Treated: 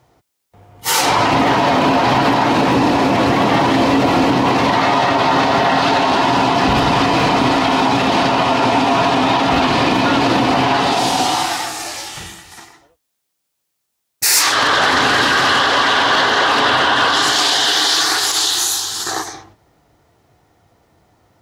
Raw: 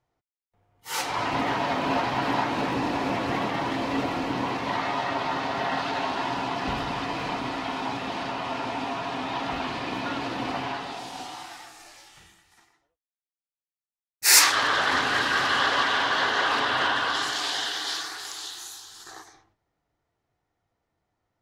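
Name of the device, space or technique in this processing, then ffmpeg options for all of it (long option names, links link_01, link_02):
mastering chain: -af "highpass=51,equalizer=frequency=1800:width_type=o:width=1.7:gain=-3.5,acompressor=threshold=-32dB:ratio=2.5,asoftclip=type=tanh:threshold=-20.5dB,alimiter=level_in=28.5dB:limit=-1dB:release=50:level=0:latency=1,volume=-5dB"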